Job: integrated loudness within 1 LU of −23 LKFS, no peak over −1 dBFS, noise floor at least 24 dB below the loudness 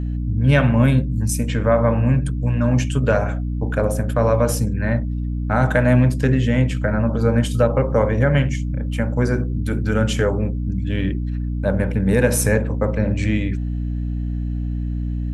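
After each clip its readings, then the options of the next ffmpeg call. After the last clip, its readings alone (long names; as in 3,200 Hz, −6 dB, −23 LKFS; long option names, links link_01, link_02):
mains hum 60 Hz; hum harmonics up to 300 Hz; level of the hum −21 dBFS; integrated loudness −20.0 LKFS; sample peak −2.5 dBFS; target loudness −23.0 LKFS
→ -af "bandreject=frequency=60:width_type=h:width=6,bandreject=frequency=120:width_type=h:width=6,bandreject=frequency=180:width_type=h:width=6,bandreject=frequency=240:width_type=h:width=6,bandreject=frequency=300:width_type=h:width=6"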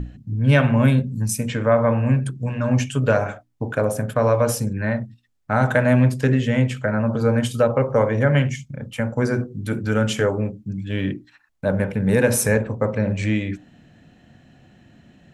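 mains hum none found; integrated loudness −21.0 LKFS; sample peak −2.5 dBFS; target loudness −23.0 LKFS
→ -af "volume=-2dB"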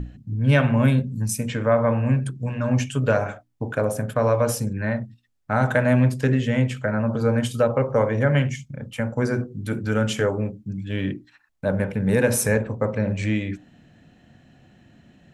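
integrated loudness −23.0 LKFS; sample peak −4.5 dBFS; background noise floor −59 dBFS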